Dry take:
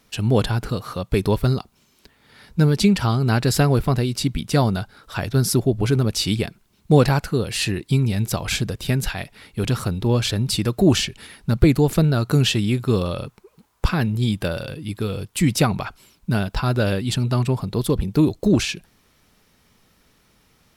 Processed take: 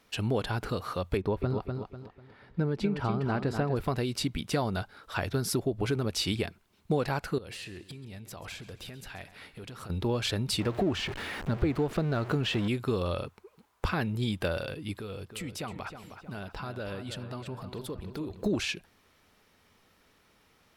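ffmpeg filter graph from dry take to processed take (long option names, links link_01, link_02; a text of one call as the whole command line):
ffmpeg -i in.wav -filter_complex "[0:a]asettb=1/sr,asplit=3[link_01][link_02][link_03];[link_01]atrim=end=1.174[link_04];[link_02]atrim=start=1.17:end=3.77,asetpts=PTS-STARTPTS,afade=type=in:duration=0.004:curve=qsin,afade=type=out:start_time=2.596:duration=0.004:curve=qsin,lowpass=frequency=1100:poles=1,aecho=1:1:247|494|741|988:0.398|0.131|0.0434|0.0143,atrim=end_sample=114660[link_05];[link_03]atrim=start=3.766[link_06];[link_04][link_05]acrossfade=duration=0.004:curve1=hsin:curve2=qsin[link_07];[link_07][link_06]acrossfade=duration=0.004:curve1=qsin:curve2=hsin,asettb=1/sr,asplit=3[link_08][link_09][link_10];[link_08]atrim=end=7.384[link_11];[link_09]atrim=start=7.38:end=9.9,asetpts=PTS-STARTPTS,afade=type=in:duration=0.004:curve=qsin,afade=type=out:start_time=2.516:duration=0.004:curve=qsin,acompressor=threshold=-33dB:ratio=10:attack=3.2:release=140:knee=1:detection=peak,aecho=1:1:134|268|402|536:0.158|0.0729|0.0335|0.0154,atrim=end_sample=111132,aeval=exprs='0.0398*(abs(mod(val(0)/0.0398+3,4)-2)-1)':channel_layout=same[link_12];[link_10]atrim=start=9.896[link_13];[link_11][link_12]acrossfade=duration=0.004:curve1=hsin:curve2=qsin[link_14];[link_14][link_13]acrossfade=duration=0.004:curve1=qsin:curve2=hsin,asettb=1/sr,asplit=3[link_15][link_16][link_17];[link_15]atrim=end=10.604[link_18];[link_16]atrim=start=10.6:end=12.68,asetpts=PTS-STARTPTS,afade=type=in:duration=0.004:curve=qsin,afade=type=out:start_time=2.076:duration=0.004:curve=qsin,aeval=exprs='val(0)+0.5*0.0531*sgn(val(0))':channel_layout=same,lowpass=frequency=2200:poles=1[link_19];[link_17]atrim=start=12.676[link_20];[link_18][link_19]acrossfade=duration=0.004:curve1=hsin:curve2=qsin[link_21];[link_21][link_20]acrossfade=duration=0.004:curve1=qsin:curve2=hsin,asettb=1/sr,asplit=3[link_22][link_23][link_24];[link_22]atrim=end=14.984[link_25];[link_23]atrim=start=14.98:end=18.44,asetpts=PTS-STARTPTS,afade=type=in:duration=0.004:curve=qsin,afade=type=out:start_time=3.456:duration=0.004:curve=qsin,acompressor=threshold=-32dB:ratio=3:attack=3.2:release=140:knee=1:detection=peak,asplit=2[link_26][link_27];[link_27]adelay=314,lowpass=frequency=3300:poles=1,volume=-9dB,asplit=2[link_28][link_29];[link_29]adelay=314,lowpass=frequency=3300:poles=1,volume=0.51,asplit=2[link_30][link_31];[link_31]adelay=314,lowpass=frequency=3300:poles=1,volume=0.51,asplit=2[link_32][link_33];[link_33]adelay=314,lowpass=frequency=3300:poles=1,volume=0.51,asplit=2[link_34][link_35];[link_35]adelay=314,lowpass=frequency=3300:poles=1,volume=0.51,asplit=2[link_36][link_37];[link_37]adelay=314,lowpass=frequency=3300:poles=1,volume=0.51[link_38];[link_26][link_28][link_30][link_32][link_34][link_36][link_38]amix=inputs=7:normalize=0,atrim=end_sample=152586[link_39];[link_24]atrim=start=18.436[link_40];[link_25][link_39]acrossfade=duration=0.004:curve1=hsin:curve2=qsin[link_41];[link_41][link_40]acrossfade=duration=0.004:curve1=qsin:curve2=hsin,bass=frequency=250:gain=-8,treble=frequency=4000:gain=-6,acompressor=threshold=-23dB:ratio=4,equalizer=frequency=87:width_type=o:width=0.24:gain=7.5,volume=-2.5dB" out.wav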